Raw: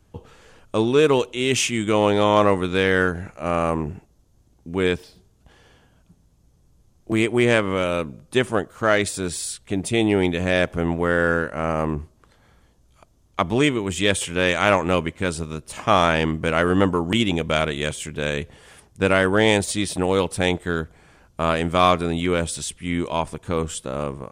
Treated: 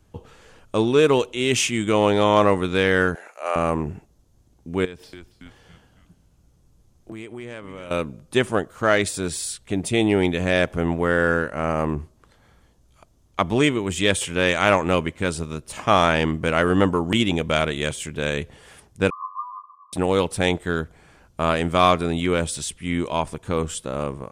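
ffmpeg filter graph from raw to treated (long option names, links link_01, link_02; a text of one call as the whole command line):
ffmpeg -i in.wav -filter_complex "[0:a]asettb=1/sr,asplit=3[link_01][link_02][link_03];[link_01]atrim=end=3.154[link_04];[link_02]atrim=start=3.15:end=3.56,asetpts=PTS-STARTPTS,afade=type=in:duration=0.004:curve=qsin,afade=type=out:start_time=0.406:duration=0.004:curve=qsin,highpass=frequency=480:width=0.5412,highpass=frequency=480:width=1.3066,highshelf=frequency=10000:gain=5[link_05];[link_03]atrim=start=3.556[link_06];[link_04][link_05]acrossfade=duration=0.004:curve1=hsin:curve2=qsin[link_07];[link_07][link_06]acrossfade=duration=0.004:curve1=qsin:curve2=hsin,asettb=1/sr,asplit=3[link_08][link_09][link_10];[link_08]atrim=end=4.854[link_11];[link_09]atrim=start=4.85:end=7.91,asetpts=PTS-STARTPTS,afade=type=in:duration=0.004:curve=qsin,afade=type=out:start_time=3.056:duration=0.004:curve=qsin,asplit=5[link_12][link_13][link_14][link_15][link_16];[link_13]adelay=279,afreqshift=-95,volume=-16dB[link_17];[link_14]adelay=558,afreqshift=-190,volume=-23.3dB[link_18];[link_15]adelay=837,afreqshift=-285,volume=-30.7dB[link_19];[link_16]adelay=1116,afreqshift=-380,volume=-38dB[link_20];[link_12][link_17][link_18][link_19][link_20]amix=inputs=5:normalize=0,atrim=end_sample=134946,acompressor=threshold=-35dB:ratio=4:attack=3.2:release=140:knee=1:detection=peak[link_21];[link_10]atrim=start=7.906[link_22];[link_11][link_21]acrossfade=duration=0.004:curve1=hsin:curve2=qsin[link_23];[link_23][link_22]acrossfade=duration=0.004:curve1=qsin:curve2=hsin,asettb=1/sr,asplit=3[link_24][link_25][link_26];[link_24]atrim=end=19.104[link_27];[link_25]atrim=start=19.1:end=19.93,asetpts=PTS-STARTPTS,afade=type=in:duration=0.004:curve=qsin,afade=type=out:start_time=0.826:duration=0.004:curve=qsin,aeval=exprs='abs(val(0))':channel_layout=same,asuperpass=centerf=1100:order=20:qfactor=4.8[link_28];[link_26]atrim=start=19.926[link_29];[link_27][link_28]acrossfade=duration=0.004:curve1=hsin:curve2=qsin[link_30];[link_30][link_29]acrossfade=duration=0.004:curve1=qsin:curve2=hsin" out.wav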